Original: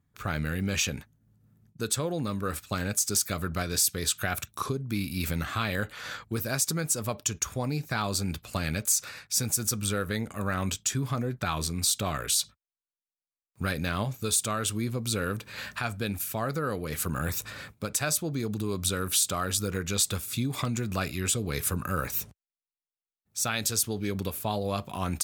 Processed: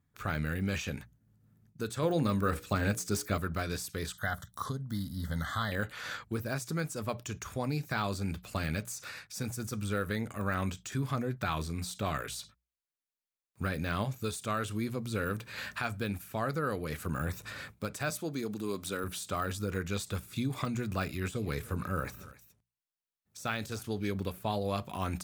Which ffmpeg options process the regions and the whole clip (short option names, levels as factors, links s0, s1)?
-filter_complex "[0:a]asettb=1/sr,asplit=3[s0][s1][s2];[s0]atrim=end=2.024[s3];[s1]atrim=start=2.02:end=3.38,asetpts=PTS-STARTPTS,afade=t=in:d=0.004:c=qsin,afade=t=out:st=1.356:d=0.004:c=qsin,bandreject=f=60:t=h:w=6,bandreject=f=120:t=h:w=6,bandreject=f=180:t=h:w=6,bandreject=f=240:t=h:w=6,bandreject=f=300:t=h:w=6,bandreject=f=360:t=h:w=6,bandreject=f=420:t=h:w=6,bandreject=f=480:t=h:w=6,bandreject=f=540:t=h:w=6,acontrast=30[s4];[s2]atrim=start=3.376[s5];[s3][s4]acrossfade=d=0.004:c1=hsin:c2=qsin[s6];[s6][s5]acrossfade=d=0.004:c1=qsin:c2=hsin,asettb=1/sr,asplit=3[s7][s8][s9];[s7]atrim=end=4.124[s10];[s8]atrim=start=4.12:end=5.72,asetpts=PTS-STARTPTS,afade=t=in:d=0.004:c=qsin,afade=t=out:st=1.596:d=0.004:c=qsin,deesser=0.55,asuperstop=centerf=2500:order=20:qfactor=2.8,equalizer=f=360:w=2.9:g=-14.5[s11];[s9]atrim=start=5.716[s12];[s10][s11]acrossfade=d=0.004:c1=hsin:c2=qsin[s13];[s13][s12]acrossfade=d=0.004:c1=qsin:c2=hsin,asettb=1/sr,asplit=3[s14][s15][s16];[s14]atrim=end=18.104[s17];[s15]atrim=start=18.1:end=19.04,asetpts=PTS-STARTPTS,afade=t=in:d=0.004:c=qsin,afade=t=out:st=0.936:d=0.004:c=qsin,highpass=190,highshelf=f=4000:g=5[s18];[s16]atrim=start=19.036[s19];[s17][s18]acrossfade=d=0.004:c1=hsin:c2=qsin[s20];[s20][s19]acrossfade=d=0.004:c1=qsin:c2=hsin,asettb=1/sr,asplit=3[s21][s22][s23];[s21]atrim=end=21.104[s24];[s22]atrim=start=21.1:end=23.82,asetpts=PTS-STARTPTS,afade=t=in:d=0.004:c=qsin,afade=t=out:st=2.716:d=0.004:c=qsin,deesser=0.45,aecho=1:1:291:0.0944,atrim=end_sample=119952[s25];[s23]atrim=start=23.816[s26];[s24][s25]acrossfade=d=0.004:c1=hsin:c2=qsin[s27];[s27][s26]acrossfade=d=0.004:c1=qsin:c2=hsin,deesser=0.95,equalizer=f=1700:w=1.5:g=2,bandreject=f=60:t=h:w=6,bandreject=f=120:t=h:w=6,bandreject=f=180:t=h:w=6,volume=0.75"